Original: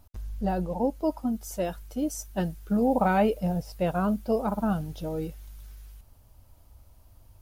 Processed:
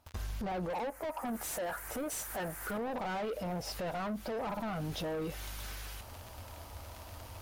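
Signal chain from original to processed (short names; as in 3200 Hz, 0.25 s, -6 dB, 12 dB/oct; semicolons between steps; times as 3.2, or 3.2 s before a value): crackle 62/s -50 dBFS; 0.7–2.78 EQ curve 210 Hz 0 dB, 530 Hz +9 dB, 1900 Hz +13 dB, 3600 Hz -10 dB, 8700 Hz +13 dB; compressor 12:1, threshold -34 dBFS, peak gain reduction 21 dB; overdrive pedal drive 26 dB, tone 3400 Hz, clips at -24 dBFS; limiter -32 dBFS, peak gain reduction 8 dB; bell 81 Hz +9.5 dB 0.44 oct; gate with hold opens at -39 dBFS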